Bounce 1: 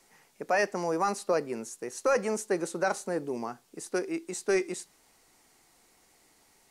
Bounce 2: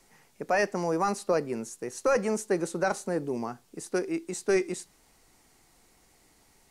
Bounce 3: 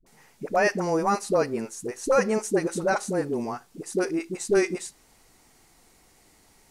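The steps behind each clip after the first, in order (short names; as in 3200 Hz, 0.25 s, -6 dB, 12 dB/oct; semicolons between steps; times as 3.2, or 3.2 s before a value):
low shelf 170 Hz +10.5 dB
dispersion highs, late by 64 ms, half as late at 460 Hz; gain +3.5 dB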